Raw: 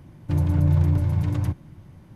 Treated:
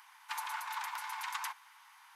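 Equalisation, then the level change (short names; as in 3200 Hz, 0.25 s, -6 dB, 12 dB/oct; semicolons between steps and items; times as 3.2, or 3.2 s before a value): steep high-pass 860 Hz 72 dB/oct; +6.0 dB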